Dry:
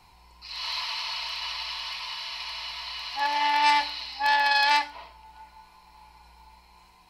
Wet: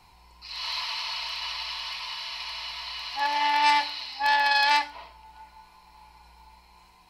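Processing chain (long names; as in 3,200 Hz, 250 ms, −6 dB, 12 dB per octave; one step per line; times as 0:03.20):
0:03.79–0:04.22: high-pass filter 130 Hz 6 dB per octave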